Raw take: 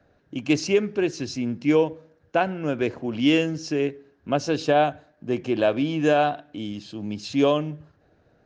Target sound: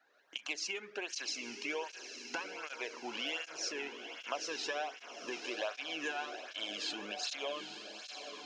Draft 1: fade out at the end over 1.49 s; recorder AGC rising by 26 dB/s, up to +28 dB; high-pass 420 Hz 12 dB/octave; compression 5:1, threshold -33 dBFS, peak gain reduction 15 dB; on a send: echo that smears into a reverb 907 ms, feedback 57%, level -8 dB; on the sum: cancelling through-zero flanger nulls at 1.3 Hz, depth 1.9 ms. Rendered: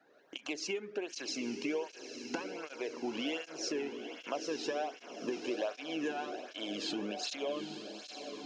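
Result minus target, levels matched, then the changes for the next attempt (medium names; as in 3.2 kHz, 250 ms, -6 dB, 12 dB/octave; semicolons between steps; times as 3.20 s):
500 Hz band +4.5 dB
change: high-pass 1 kHz 12 dB/octave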